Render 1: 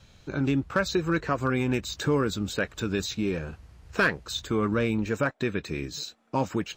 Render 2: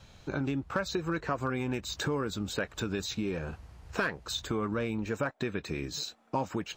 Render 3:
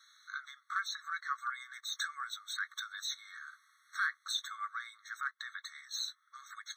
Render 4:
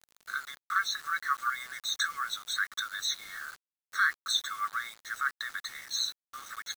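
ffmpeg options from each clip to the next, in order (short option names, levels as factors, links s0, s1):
-af "acompressor=threshold=0.0282:ratio=3,equalizer=f=830:w=1.3:g=4.5"
-af "afftfilt=real='re*eq(mod(floor(b*sr/1024/1100),2),1)':imag='im*eq(mod(floor(b*sr/1024/1100),2),1)':win_size=1024:overlap=0.75"
-af "acrusher=bits=8:mix=0:aa=0.000001,volume=2.24"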